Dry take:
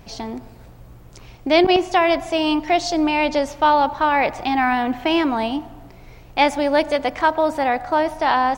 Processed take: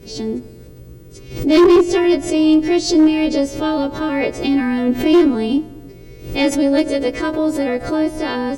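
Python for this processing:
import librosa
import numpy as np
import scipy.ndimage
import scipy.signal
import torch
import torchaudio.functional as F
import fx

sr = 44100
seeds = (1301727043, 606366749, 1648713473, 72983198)

y = fx.freq_snap(x, sr, grid_st=2)
y = fx.low_shelf_res(y, sr, hz=580.0, db=11.0, q=3.0)
y = fx.cheby_harmonics(y, sr, harmonics=(2, 5), levels_db=(-20, -42), full_scale_db=-1.0)
y = fx.pre_swell(y, sr, db_per_s=110.0)
y = y * librosa.db_to_amplitude(-5.5)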